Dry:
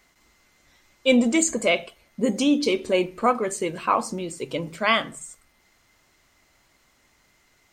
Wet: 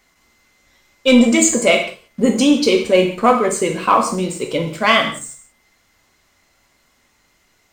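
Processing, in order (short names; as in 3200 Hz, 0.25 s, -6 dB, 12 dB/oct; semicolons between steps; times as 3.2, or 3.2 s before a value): sample leveller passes 1; non-linear reverb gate 0.21 s falling, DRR 3 dB; gain +3 dB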